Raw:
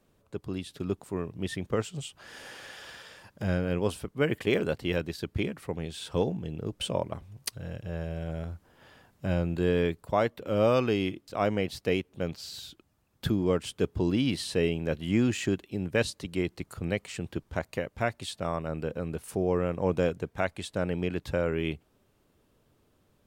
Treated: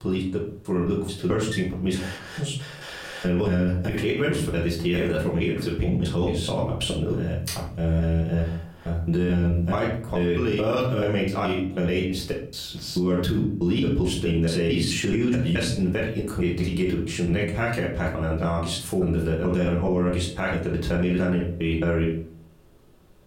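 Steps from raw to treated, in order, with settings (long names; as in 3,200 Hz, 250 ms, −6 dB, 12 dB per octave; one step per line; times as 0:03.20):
slices reordered back to front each 216 ms, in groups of 3
convolution reverb RT60 0.45 s, pre-delay 5 ms, DRR −4 dB
dynamic equaliser 600 Hz, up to −6 dB, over −32 dBFS, Q 1
brickwall limiter −19 dBFS, peak gain reduction 10.5 dB
level +4 dB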